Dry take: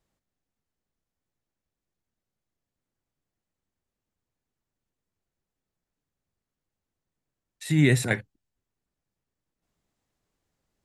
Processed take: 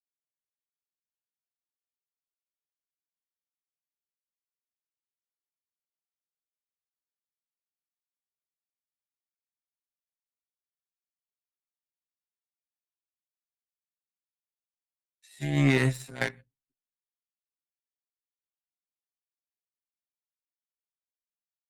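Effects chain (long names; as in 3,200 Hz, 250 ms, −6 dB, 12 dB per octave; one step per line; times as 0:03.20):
downward expander −49 dBFS
harmonic generator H 3 −19 dB, 7 −23 dB, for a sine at −8 dBFS
time stretch by overlap-add 2×, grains 30 ms
level −1.5 dB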